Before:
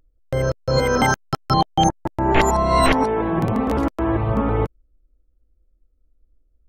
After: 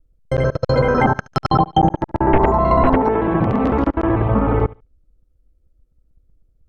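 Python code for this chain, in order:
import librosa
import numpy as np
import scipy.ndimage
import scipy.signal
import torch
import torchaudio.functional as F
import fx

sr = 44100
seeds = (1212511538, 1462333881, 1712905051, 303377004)

y = fx.local_reverse(x, sr, ms=63.0)
y = fx.echo_feedback(y, sr, ms=72, feedback_pct=19, wet_db=-22.0)
y = fx.env_lowpass_down(y, sr, base_hz=1100.0, full_db=-12.5)
y = y * 10.0 ** (3.5 / 20.0)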